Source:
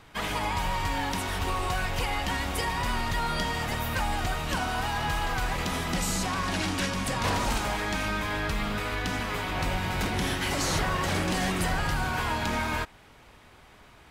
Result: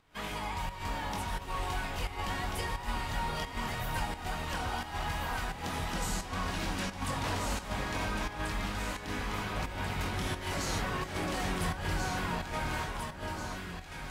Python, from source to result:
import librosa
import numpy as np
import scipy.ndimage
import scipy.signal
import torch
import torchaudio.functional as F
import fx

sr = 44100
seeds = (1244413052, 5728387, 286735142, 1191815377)

y = fx.chorus_voices(x, sr, voices=2, hz=0.77, base_ms=22, depth_ms=2.7, mix_pct=35)
y = fx.echo_alternate(y, sr, ms=694, hz=1400.0, feedback_pct=72, wet_db=-2.5)
y = fx.volume_shaper(y, sr, bpm=87, per_beat=1, depth_db=-9, release_ms=120.0, shape='slow start')
y = F.gain(torch.from_numpy(y), -5.0).numpy()